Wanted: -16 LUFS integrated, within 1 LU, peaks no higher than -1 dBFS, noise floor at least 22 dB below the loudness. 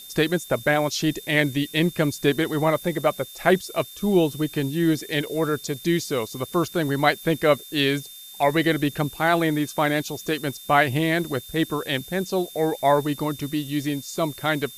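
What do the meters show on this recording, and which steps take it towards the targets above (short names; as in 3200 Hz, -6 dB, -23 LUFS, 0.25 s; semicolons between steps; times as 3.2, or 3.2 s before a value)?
steady tone 3600 Hz; tone level -43 dBFS; noise floor -42 dBFS; noise floor target -46 dBFS; loudness -23.5 LUFS; peak -4.0 dBFS; loudness target -16.0 LUFS
-> notch 3600 Hz, Q 30; noise print and reduce 6 dB; gain +7.5 dB; limiter -1 dBFS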